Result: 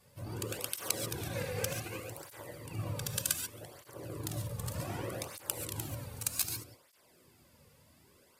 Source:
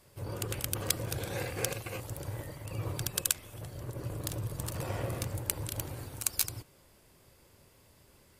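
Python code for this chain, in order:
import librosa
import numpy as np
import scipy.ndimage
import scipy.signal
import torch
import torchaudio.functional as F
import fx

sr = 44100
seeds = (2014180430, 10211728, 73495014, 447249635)

y = fx.rev_gated(x, sr, seeds[0], gate_ms=160, shape='rising', drr_db=4.5)
y = fx.flanger_cancel(y, sr, hz=0.65, depth_ms=3.2)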